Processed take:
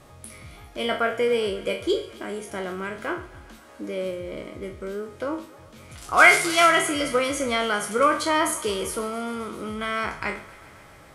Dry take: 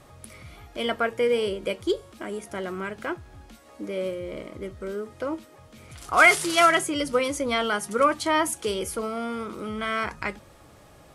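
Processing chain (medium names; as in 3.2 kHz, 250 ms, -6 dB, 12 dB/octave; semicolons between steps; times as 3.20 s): spectral sustain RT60 0.38 s; thinning echo 134 ms, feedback 82%, high-pass 320 Hz, level -19.5 dB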